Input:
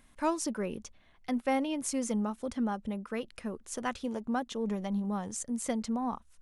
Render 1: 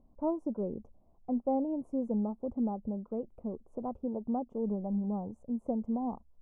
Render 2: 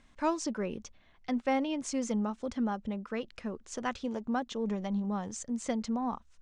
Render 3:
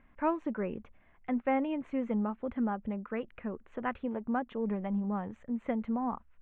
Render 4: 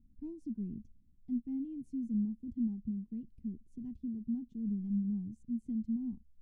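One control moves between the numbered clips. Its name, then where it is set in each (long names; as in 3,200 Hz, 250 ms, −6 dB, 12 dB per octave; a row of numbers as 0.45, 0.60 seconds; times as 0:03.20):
inverse Chebyshev low-pass filter, stop band from: 1,600, 12,000, 4,700, 510 Hertz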